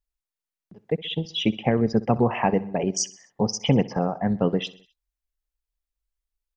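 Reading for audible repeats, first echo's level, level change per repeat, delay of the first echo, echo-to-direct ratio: 3, -19.5 dB, -5.5 dB, 64 ms, -18.0 dB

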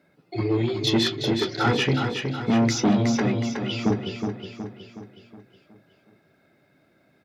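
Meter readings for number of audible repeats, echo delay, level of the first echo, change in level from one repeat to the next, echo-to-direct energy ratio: 5, 0.368 s, -6.0 dB, -6.0 dB, -5.0 dB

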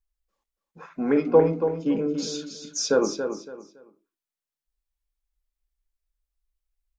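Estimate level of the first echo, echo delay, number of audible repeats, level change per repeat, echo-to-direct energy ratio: -8.0 dB, 0.281 s, 3, -11.5 dB, -7.5 dB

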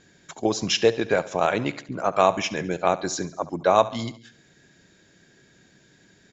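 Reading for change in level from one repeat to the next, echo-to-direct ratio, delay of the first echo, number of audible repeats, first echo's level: -5.0 dB, -16.0 dB, 70 ms, 4, -17.5 dB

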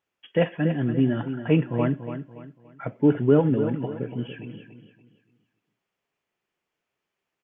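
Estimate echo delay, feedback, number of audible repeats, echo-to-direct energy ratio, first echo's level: 0.286 s, 34%, 3, -9.5 dB, -10.0 dB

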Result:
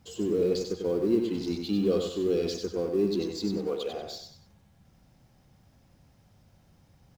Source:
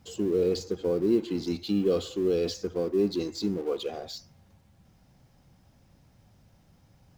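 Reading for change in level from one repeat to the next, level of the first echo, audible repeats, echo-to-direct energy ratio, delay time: -9.5 dB, -5.5 dB, 3, -5.0 dB, 95 ms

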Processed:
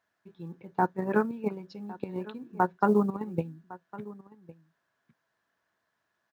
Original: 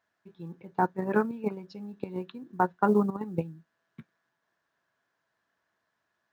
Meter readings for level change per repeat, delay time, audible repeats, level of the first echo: no steady repeat, 1.107 s, 1, -19.0 dB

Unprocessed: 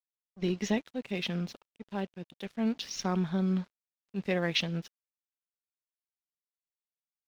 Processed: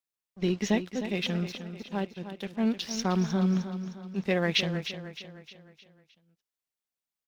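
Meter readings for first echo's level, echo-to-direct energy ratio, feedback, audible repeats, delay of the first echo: -10.5 dB, -9.5 dB, 46%, 4, 0.308 s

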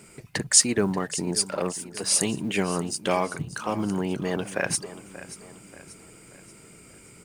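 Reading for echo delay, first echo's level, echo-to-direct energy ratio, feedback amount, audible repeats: 0.583 s, -15.5 dB, -14.5 dB, 47%, 3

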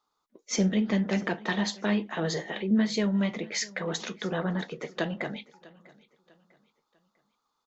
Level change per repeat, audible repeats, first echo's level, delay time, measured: -9.0 dB, 2, -22.0 dB, 0.648 s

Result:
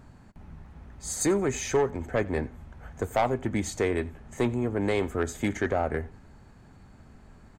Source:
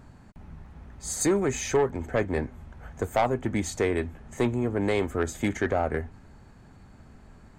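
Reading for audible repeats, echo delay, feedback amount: 2, 89 ms, 24%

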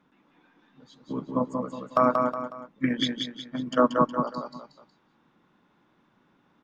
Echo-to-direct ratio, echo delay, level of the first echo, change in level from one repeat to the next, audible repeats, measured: -3.5 dB, 0.183 s, -4.0 dB, -8.0 dB, 3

